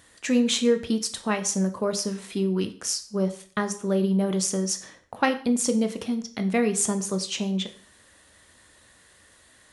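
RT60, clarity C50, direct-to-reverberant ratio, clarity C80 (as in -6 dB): 0.45 s, 13.5 dB, 7.5 dB, 17.0 dB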